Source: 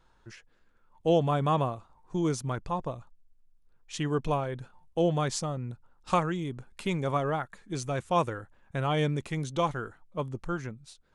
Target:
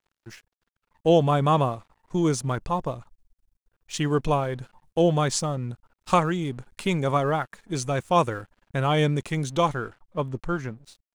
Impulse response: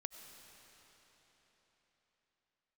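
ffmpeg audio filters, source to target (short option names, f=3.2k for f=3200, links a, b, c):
-af "aeval=exprs='sgn(val(0))*max(abs(val(0))-0.00126,0)':c=same,asetnsamples=n=441:p=0,asendcmd='9.75 highshelf g -5',highshelf=f=5.3k:g=3,volume=5.5dB"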